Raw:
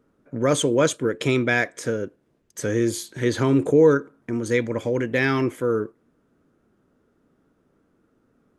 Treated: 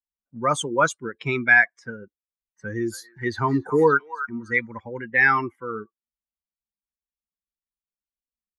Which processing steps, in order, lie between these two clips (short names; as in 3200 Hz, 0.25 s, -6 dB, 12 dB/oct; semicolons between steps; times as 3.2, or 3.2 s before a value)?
per-bin expansion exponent 2; low-pass opened by the level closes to 1200 Hz, open at -23.5 dBFS; band shelf 1300 Hz +12.5 dB; 2.61–4.8 delay with a stepping band-pass 0.279 s, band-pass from 1200 Hz, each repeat 1.4 oct, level -8.5 dB; gain -1.5 dB